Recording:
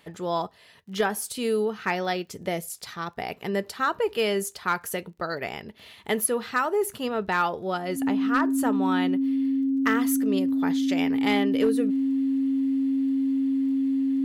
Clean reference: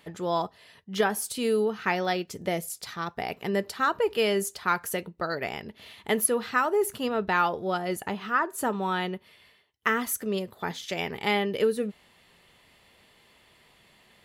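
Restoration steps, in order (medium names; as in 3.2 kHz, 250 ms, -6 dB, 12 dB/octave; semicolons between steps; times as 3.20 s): clip repair -14.5 dBFS; de-click; band-stop 270 Hz, Q 30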